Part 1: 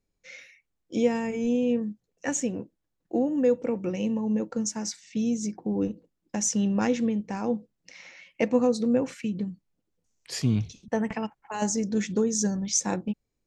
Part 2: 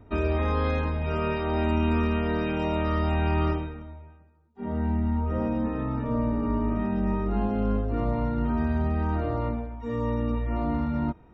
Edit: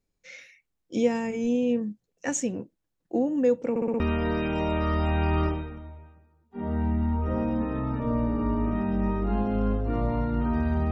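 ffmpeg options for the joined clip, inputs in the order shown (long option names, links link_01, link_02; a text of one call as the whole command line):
ffmpeg -i cue0.wav -i cue1.wav -filter_complex "[0:a]apad=whole_dur=10.91,atrim=end=10.91,asplit=5[link_01][link_02][link_03][link_04][link_05];[link_01]atrim=end=3.762[link_06];[link_02]atrim=start=3.698:end=3.762[link_07];[link_03]atrim=start=3.698:end=3.762[link_08];[link_04]atrim=start=3.698:end=3.762[link_09];[link_05]atrim=start=3.698:end=3.762[link_10];[1:a]atrim=start=2.038:end=8.95[link_11];[link_06][link_07]acrossfade=duration=0.004:curve1=hsin:curve2=hsin[link_12];[link_12][link_08]acrossfade=duration=0.004:curve1=hsin:curve2=hsin[link_13];[link_13][link_09]acrossfade=duration=0.004:curve1=hsin:curve2=hsin[link_14];[link_14][link_10]acrossfade=duration=0.004:curve1=hsin:curve2=hsin[link_15];[link_15][link_11]acrossfade=duration=0.004:curve1=hsin:curve2=hsin" out.wav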